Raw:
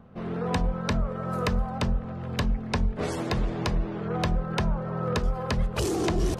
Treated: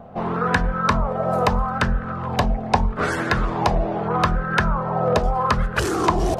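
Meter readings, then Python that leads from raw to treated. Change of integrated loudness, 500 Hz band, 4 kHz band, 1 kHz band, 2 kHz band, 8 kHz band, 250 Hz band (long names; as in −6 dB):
+7.0 dB, +7.5 dB, +4.5 dB, +13.0 dB, +12.0 dB, +3.5 dB, +4.0 dB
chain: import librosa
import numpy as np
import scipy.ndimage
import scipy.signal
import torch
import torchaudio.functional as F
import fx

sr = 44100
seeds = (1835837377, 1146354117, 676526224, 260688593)

p1 = fx.rider(x, sr, range_db=10, speed_s=0.5)
p2 = x + (p1 * librosa.db_to_amplitude(-2.5))
p3 = fx.bell_lfo(p2, sr, hz=0.78, low_hz=680.0, high_hz=1600.0, db=16)
y = p3 * librosa.db_to_amplitude(-1.0)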